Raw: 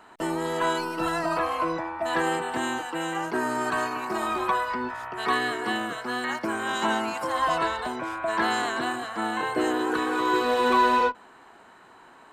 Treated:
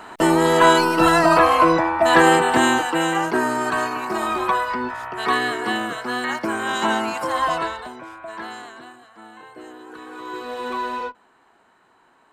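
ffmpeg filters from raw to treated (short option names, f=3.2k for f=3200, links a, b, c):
-af "volume=20.5dB,afade=t=out:st=2.59:d=1.01:silence=0.421697,afade=t=out:st=7.35:d=0.55:silence=0.334965,afade=t=out:st=7.9:d=1.06:silence=0.316228,afade=t=in:st=9.84:d=0.78:silence=0.375837"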